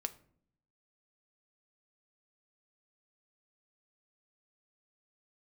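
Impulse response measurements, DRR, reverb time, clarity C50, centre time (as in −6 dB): 8.5 dB, 0.60 s, 17.5 dB, 4 ms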